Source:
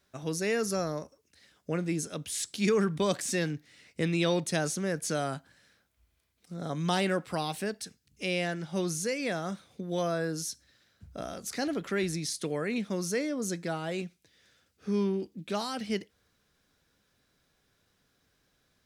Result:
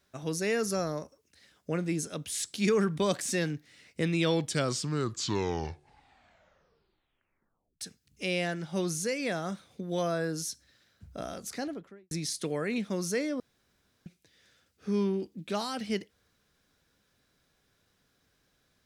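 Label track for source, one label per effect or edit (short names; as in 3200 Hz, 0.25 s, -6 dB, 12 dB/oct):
4.120000	4.120000	tape stop 3.69 s
11.350000	12.110000	studio fade out
13.400000	14.060000	room tone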